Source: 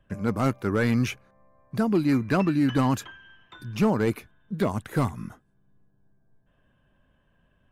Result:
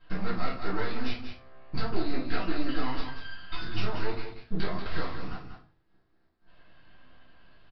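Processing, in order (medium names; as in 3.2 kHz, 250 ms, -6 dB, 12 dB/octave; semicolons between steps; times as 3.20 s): tone controls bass -14 dB, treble +15 dB; compression 6:1, threshold -40 dBFS, peak gain reduction 18 dB; half-wave rectifier; delay 187 ms -8.5 dB; reverberation RT60 0.40 s, pre-delay 4 ms, DRR -9.5 dB; resampled via 11.025 kHz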